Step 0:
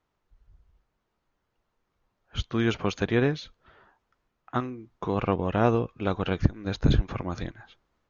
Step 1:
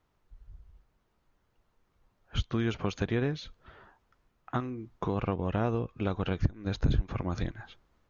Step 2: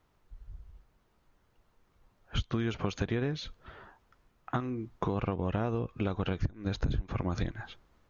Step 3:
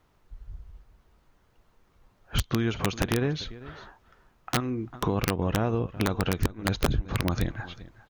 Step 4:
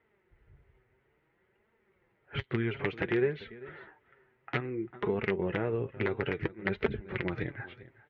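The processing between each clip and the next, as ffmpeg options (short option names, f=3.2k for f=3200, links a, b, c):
-af "acompressor=threshold=-34dB:ratio=2.5,lowshelf=f=160:g=6,volume=2dB"
-af "acompressor=threshold=-31dB:ratio=4,volume=3.5dB"
-af "aecho=1:1:395:0.126,aeval=exprs='(mod(10.6*val(0)+1,2)-1)/10.6':c=same,volume=5dB"
-af "flanger=delay=4.3:depth=3.8:regen=40:speed=0.58:shape=triangular,highpass=110,equalizer=f=170:t=q:w=4:g=-6,equalizer=f=270:t=q:w=4:g=-6,equalizer=f=390:t=q:w=4:g=8,equalizer=f=700:t=q:w=4:g=-5,equalizer=f=1.1k:t=q:w=4:g=-8,equalizer=f=2k:t=q:w=4:g=9,lowpass=f=2.7k:w=0.5412,lowpass=f=2.7k:w=1.3066"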